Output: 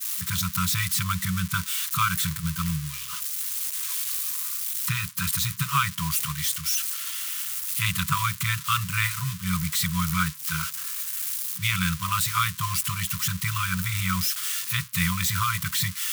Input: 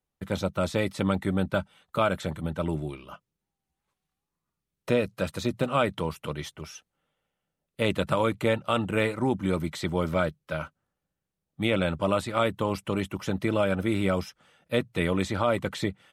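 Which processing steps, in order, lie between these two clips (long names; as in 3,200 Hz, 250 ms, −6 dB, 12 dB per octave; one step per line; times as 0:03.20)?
spike at every zero crossing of −23 dBFS
brick-wall band-stop 190–970 Hz
downward expander −31 dBFS
level +4.5 dB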